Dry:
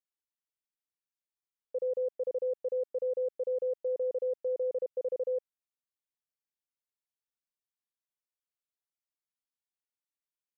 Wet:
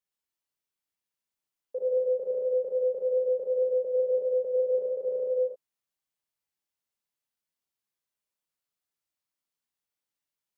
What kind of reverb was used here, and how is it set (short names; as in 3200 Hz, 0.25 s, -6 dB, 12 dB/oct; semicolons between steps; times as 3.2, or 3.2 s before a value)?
non-linear reverb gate 0.18 s flat, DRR -3 dB